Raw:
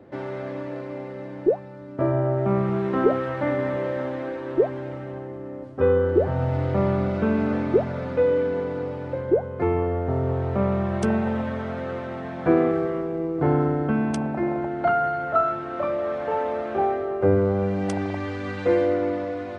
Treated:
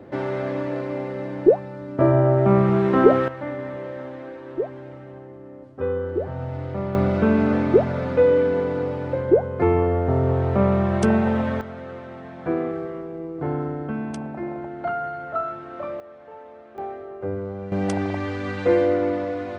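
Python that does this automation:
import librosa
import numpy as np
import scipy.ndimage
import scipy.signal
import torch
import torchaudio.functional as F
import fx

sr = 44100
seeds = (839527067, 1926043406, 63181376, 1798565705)

y = fx.gain(x, sr, db=fx.steps((0.0, 5.5), (3.28, -6.0), (6.95, 4.0), (11.61, -5.5), (16.0, -17.0), (16.78, -9.5), (17.72, 2.0)))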